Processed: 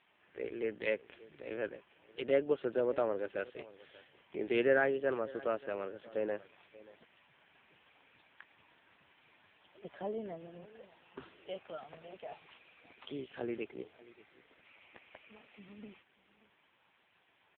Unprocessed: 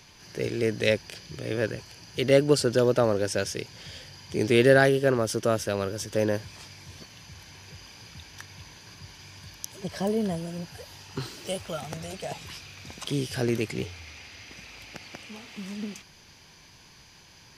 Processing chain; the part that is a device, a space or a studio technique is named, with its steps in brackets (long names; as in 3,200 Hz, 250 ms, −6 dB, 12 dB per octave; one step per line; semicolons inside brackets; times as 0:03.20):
0:13.64–0:14.65: dynamic equaliser 2,500 Hz, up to −8 dB, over −56 dBFS, Q 1.9
satellite phone (band-pass filter 320–3,100 Hz; single-tap delay 582 ms −20 dB; level −8 dB; AMR narrowband 5.9 kbit/s 8,000 Hz)